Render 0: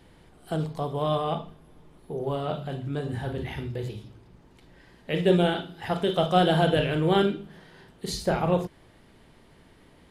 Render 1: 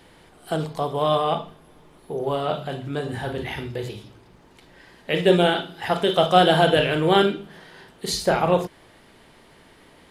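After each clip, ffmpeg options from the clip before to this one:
ffmpeg -i in.wav -af "lowshelf=frequency=270:gain=-10,volume=7.5dB" out.wav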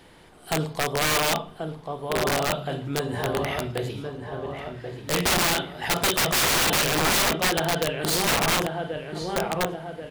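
ffmpeg -i in.wav -filter_complex "[0:a]asplit=2[link_01][link_02];[link_02]adelay=1085,lowpass=frequency=2700:poles=1,volume=-7dB,asplit=2[link_03][link_04];[link_04]adelay=1085,lowpass=frequency=2700:poles=1,volume=0.52,asplit=2[link_05][link_06];[link_06]adelay=1085,lowpass=frequency=2700:poles=1,volume=0.52,asplit=2[link_07][link_08];[link_08]adelay=1085,lowpass=frequency=2700:poles=1,volume=0.52,asplit=2[link_09][link_10];[link_10]adelay=1085,lowpass=frequency=2700:poles=1,volume=0.52,asplit=2[link_11][link_12];[link_12]adelay=1085,lowpass=frequency=2700:poles=1,volume=0.52[link_13];[link_01][link_03][link_05][link_07][link_09][link_11][link_13]amix=inputs=7:normalize=0,aeval=exprs='(mod(6.68*val(0)+1,2)-1)/6.68':channel_layout=same" out.wav

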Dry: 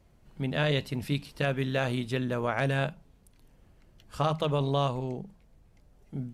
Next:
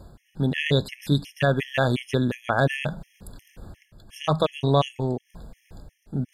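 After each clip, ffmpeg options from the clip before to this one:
ffmpeg -i in.wav -af "areverse,acompressor=mode=upward:threshold=-37dB:ratio=2.5,areverse,afftfilt=real='re*gt(sin(2*PI*2.8*pts/sr)*(1-2*mod(floor(b*sr/1024/1700),2)),0)':imag='im*gt(sin(2*PI*2.8*pts/sr)*(1-2*mod(floor(b*sr/1024/1700),2)),0)':win_size=1024:overlap=0.75,volume=8.5dB" out.wav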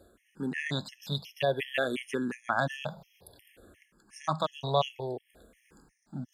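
ffmpeg -i in.wav -filter_complex "[0:a]highpass=frequency=390:poles=1,asplit=2[link_01][link_02];[link_02]afreqshift=-0.56[link_03];[link_01][link_03]amix=inputs=2:normalize=1,volume=-2dB" out.wav

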